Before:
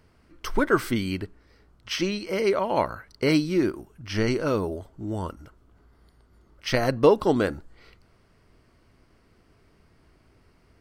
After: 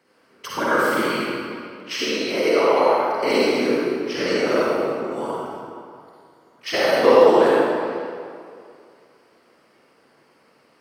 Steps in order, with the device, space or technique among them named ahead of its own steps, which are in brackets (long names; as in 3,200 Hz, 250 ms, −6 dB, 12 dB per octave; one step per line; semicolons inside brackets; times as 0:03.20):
whispering ghost (random phases in short frames; high-pass filter 350 Hz 12 dB per octave; convolution reverb RT60 2.4 s, pre-delay 43 ms, DRR −7 dB)
de-essing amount 55%